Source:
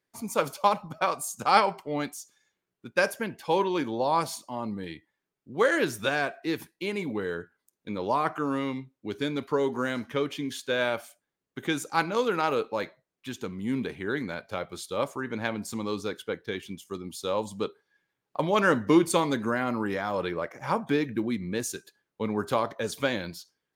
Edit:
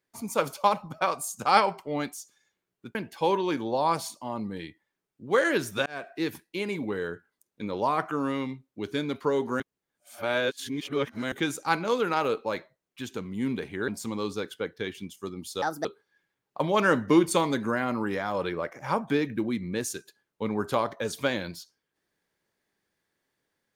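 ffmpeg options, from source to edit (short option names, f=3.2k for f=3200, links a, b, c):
-filter_complex "[0:a]asplit=8[a][b][c][d][e][f][g][h];[a]atrim=end=2.952[i];[b]atrim=start=3.218:end=6.13,asetpts=PTS-STARTPTS,afade=t=out:st=2.908:d=0.004:c=hsin[j];[c]atrim=start=6.13:end=9.872,asetpts=PTS-STARTPTS,afade=t=in:d=0.27[k];[d]atrim=start=9.868:end=11.592,asetpts=PTS-STARTPTS,areverse[l];[e]atrim=start=11.588:end=14.152[m];[f]atrim=start=15.558:end=17.304[n];[g]atrim=start=17.3:end=17.64,asetpts=PTS-STARTPTS,asetrate=65709,aresample=44100,atrim=end_sample=10063,asetpts=PTS-STARTPTS[o];[h]atrim=start=17.636[p];[j][k]concat=n=2:v=0:a=1[q];[i][q]acrossfade=d=0.004:c1=hsin:c2=hsin[r];[r][l]acrossfade=d=0.004:c1=hsin:c2=hsin[s];[s][m]acrossfade=d=0.004:c1=hsin:c2=hsin[t];[t][n]acrossfade=d=0.004:c1=hsin:c2=hsin[u];[u][o]acrossfade=d=0.004:c1=hsin:c2=hsin[v];[v][p]acrossfade=d=0.004:c1=hsin:c2=hsin"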